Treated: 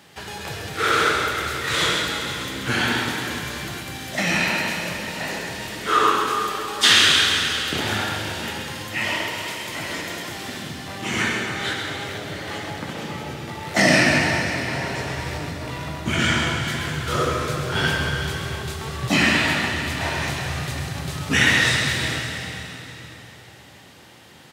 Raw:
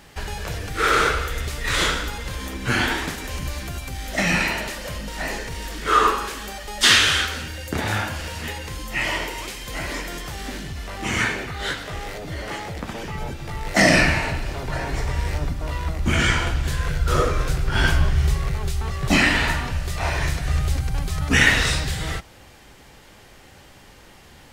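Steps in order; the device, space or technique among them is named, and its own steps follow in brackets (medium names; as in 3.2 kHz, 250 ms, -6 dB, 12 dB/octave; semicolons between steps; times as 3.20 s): PA in a hall (high-pass 100 Hz 24 dB/octave; peaking EQ 3.5 kHz +3.5 dB 0.54 oct; delay 133 ms -8 dB; reverberation RT60 3.7 s, pre-delay 60 ms, DRR 2.5 dB); trim -2 dB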